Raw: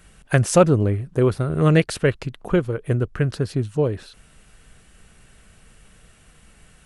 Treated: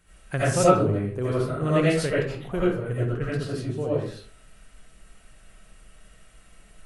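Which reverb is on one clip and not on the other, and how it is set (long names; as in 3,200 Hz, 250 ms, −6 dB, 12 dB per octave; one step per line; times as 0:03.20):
comb and all-pass reverb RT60 0.47 s, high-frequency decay 0.6×, pre-delay 45 ms, DRR −9 dB
level −11.5 dB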